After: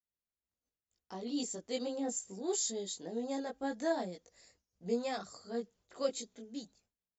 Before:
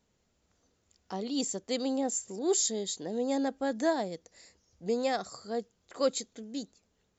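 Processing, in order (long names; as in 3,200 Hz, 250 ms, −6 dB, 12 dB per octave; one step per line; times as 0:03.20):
downward expander −59 dBFS
multi-voice chorus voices 4, 0.65 Hz, delay 19 ms, depth 2.5 ms
level −3 dB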